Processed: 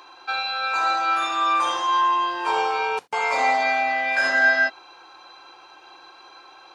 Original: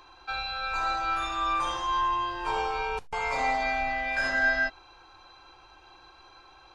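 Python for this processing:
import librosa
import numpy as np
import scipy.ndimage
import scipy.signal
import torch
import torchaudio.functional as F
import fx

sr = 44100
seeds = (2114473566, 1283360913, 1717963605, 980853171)

y = scipy.signal.sosfilt(scipy.signal.butter(2, 300.0, 'highpass', fs=sr, output='sos'), x)
y = F.gain(torch.from_numpy(y), 7.0).numpy()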